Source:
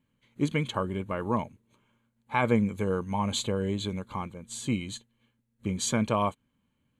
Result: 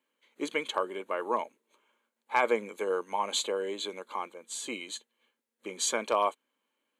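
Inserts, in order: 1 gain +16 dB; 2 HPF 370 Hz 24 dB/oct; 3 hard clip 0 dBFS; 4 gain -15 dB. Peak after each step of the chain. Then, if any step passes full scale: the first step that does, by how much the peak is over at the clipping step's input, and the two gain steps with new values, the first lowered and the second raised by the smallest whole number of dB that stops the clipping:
+4.5, +3.5, 0.0, -15.0 dBFS; step 1, 3.5 dB; step 1 +12 dB, step 4 -11 dB

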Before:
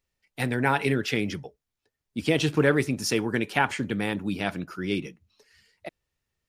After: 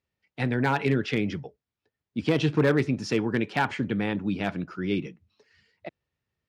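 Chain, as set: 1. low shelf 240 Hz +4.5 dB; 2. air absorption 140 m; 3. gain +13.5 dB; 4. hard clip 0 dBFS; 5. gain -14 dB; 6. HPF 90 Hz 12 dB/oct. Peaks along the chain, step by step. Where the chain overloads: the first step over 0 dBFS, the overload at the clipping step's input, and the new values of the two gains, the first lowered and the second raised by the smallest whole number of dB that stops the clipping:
-5.5, -6.5, +7.0, 0.0, -14.0, -10.5 dBFS; step 3, 7.0 dB; step 3 +6.5 dB, step 5 -7 dB

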